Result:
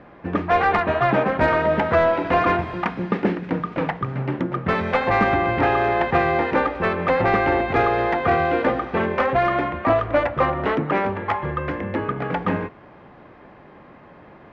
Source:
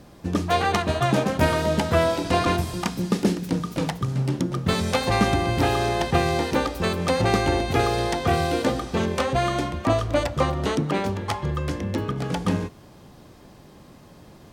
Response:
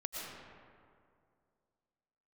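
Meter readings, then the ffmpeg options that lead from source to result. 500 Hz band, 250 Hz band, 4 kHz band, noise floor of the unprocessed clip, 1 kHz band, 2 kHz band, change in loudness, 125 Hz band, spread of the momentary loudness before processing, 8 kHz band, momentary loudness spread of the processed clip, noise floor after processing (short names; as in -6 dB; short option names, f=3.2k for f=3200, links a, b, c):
+3.5 dB, 0.0 dB, -7.5 dB, -48 dBFS, +5.0 dB, +5.5 dB, +2.5 dB, -3.0 dB, 6 LU, under -20 dB, 7 LU, -46 dBFS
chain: -filter_complex "[0:a]lowpass=f=2.1k:t=q:w=1.7,asplit=2[a][b];[b]highpass=f=720:p=1,volume=14dB,asoftclip=type=tanh:threshold=-4.5dB[c];[a][c]amix=inputs=2:normalize=0,lowpass=f=1.1k:p=1,volume=-6dB"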